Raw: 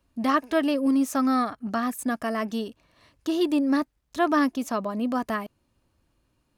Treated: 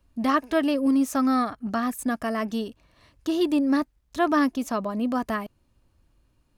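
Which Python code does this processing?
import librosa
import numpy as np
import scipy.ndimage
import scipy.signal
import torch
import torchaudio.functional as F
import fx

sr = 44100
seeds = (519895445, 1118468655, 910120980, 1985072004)

y = fx.low_shelf(x, sr, hz=73.0, db=11.5)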